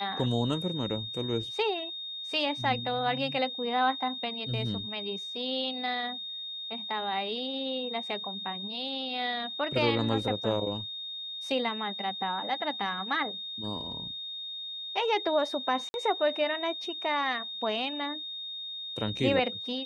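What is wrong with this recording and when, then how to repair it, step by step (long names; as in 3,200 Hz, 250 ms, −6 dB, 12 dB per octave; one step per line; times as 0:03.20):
whistle 3,700 Hz −36 dBFS
0:15.89–0:15.94: drop-out 51 ms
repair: notch filter 3,700 Hz, Q 30
repair the gap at 0:15.89, 51 ms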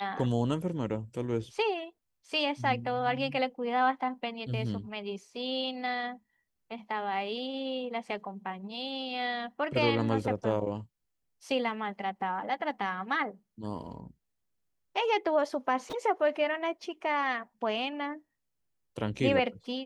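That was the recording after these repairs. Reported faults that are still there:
none of them is left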